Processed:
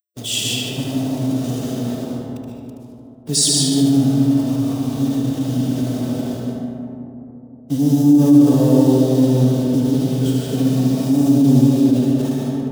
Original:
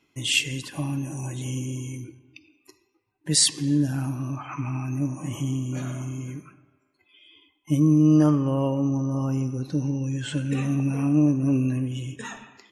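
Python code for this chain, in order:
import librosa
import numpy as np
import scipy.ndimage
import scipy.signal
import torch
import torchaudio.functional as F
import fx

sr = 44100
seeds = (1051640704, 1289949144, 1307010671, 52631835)

p1 = fx.delta_hold(x, sr, step_db=-31.5)
p2 = fx.leveller(p1, sr, passes=1)
p3 = scipy.signal.sosfilt(scipy.signal.butter(2, 110.0, 'highpass', fs=sr, output='sos'), p2)
p4 = fx.band_shelf(p3, sr, hz=1600.0, db=-12.5, octaves=1.7)
p5 = fx.notch(p4, sr, hz=4300.0, q=17.0)
p6 = p5 + 0.31 * np.pad(p5, (int(4.3 * sr / 1000.0), 0))[:len(p5)]
p7 = p6 + fx.echo_feedback(p6, sr, ms=75, feedback_pct=54, wet_db=-5.5, dry=0)
p8 = fx.rev_freeverb(p7, sr, rt60_s=3.5, hf_ratio=0.25, predelay_ms=90, drr_db=-3.5)
y = fx.pitch_keep_formants(p8, sr, semitones=-1.0)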